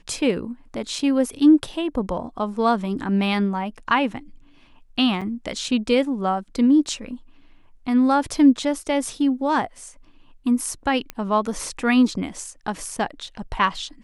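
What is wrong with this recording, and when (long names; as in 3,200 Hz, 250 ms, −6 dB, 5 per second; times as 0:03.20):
0:00.99: drop-out 2.4 ms
0:05.21–0:05.22: drop-out 5.9 ms
0:11.10: click −14 dBFS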